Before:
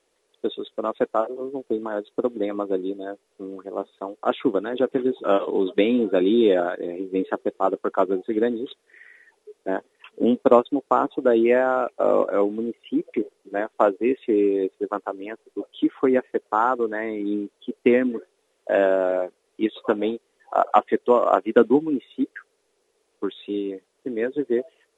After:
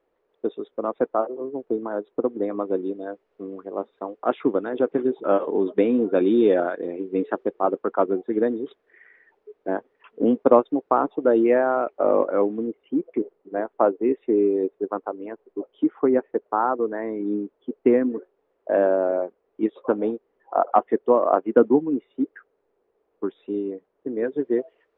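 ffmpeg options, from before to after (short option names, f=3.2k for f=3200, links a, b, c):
-af "asetnsamples=n=441:p=0,asendcmd='2.58 lowpass f 1900;5.2 lowpass f 1500;6.13 lowpass f 2200;7.49 lowpass f 1700;12.67 lowpass f 1200;24.24 lowpass f 1800',lowpass=1.4k"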